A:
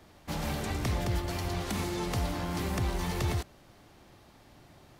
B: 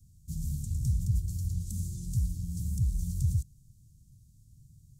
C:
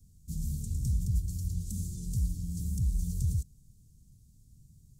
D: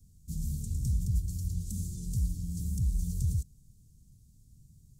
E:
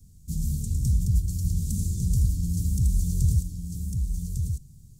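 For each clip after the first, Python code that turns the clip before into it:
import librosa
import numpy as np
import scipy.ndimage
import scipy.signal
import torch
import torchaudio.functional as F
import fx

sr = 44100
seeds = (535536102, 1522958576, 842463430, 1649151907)

y1 = scipy.signal.sosfilt(scipy.signal.ellip(3, 1.0, 80, [140.0, 7300.0], 'bandstop', fs=sr, output='sos'), x)
y1 = fx.high_shelf(y1, sr, hz=8500.0, db=-8.5)
y1 = y1 * librosa.db_to_amplitude(4.5)
y2 = y1 + 0.35 * np.pad(y1, (int(4.3 * sr / 1000.0), 0))[:len(y1)]
y2 = fx.small_body(y2, sr, hz=(460.0, 790.0), ring_ms=30, db=13)
y3 = y2
y4 = y3 + 10.0 ** (-5.0 / 20.0) * np.pad(y3, (int(1151 * sr / 1000.0), 0))[:len(y3)]
y4 = y4 * librosa.db_to_amplitude(6.5)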